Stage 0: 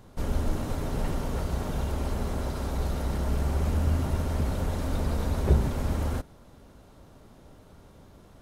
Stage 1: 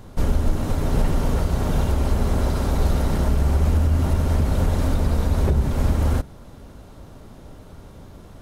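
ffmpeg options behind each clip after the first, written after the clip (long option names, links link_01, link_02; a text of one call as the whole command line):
ffmpeg -i in.wav -af "lowshelf=frequency=170:gain=4.5,bandreject=frequency=64.84:width_type=h:width=4,bandreject=frequency=129.68:width_type=h:width=4,bandreject=frequency=194.52:width_type=h:width=4,alimiter=limit=-17.5dB:level=0:latency=1:release=290,volume=7.5dB" out.wav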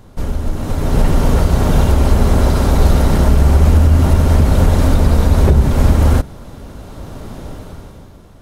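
ffmpeg -i in.wav -af "dynaudnorm=framelen=130:gausssize=13:maxgain=14.5dB" out.wav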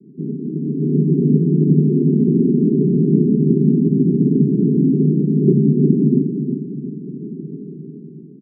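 ffmpeg -i in.wav -af "asuperpass=centerf=240:order=20:qfactor=0.87,aecho=1:1:357|714|1071|1428|1785|2142:0.447|0.21|0.0987|0.0464|0.0218|0.0102,volume=4.5dB" out.wav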